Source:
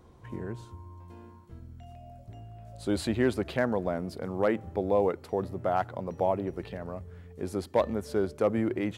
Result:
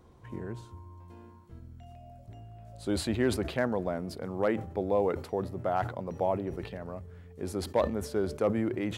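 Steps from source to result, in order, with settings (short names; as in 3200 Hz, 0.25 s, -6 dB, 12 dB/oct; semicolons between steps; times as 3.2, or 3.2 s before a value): sustainer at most 110 dB/s; gain -2 dB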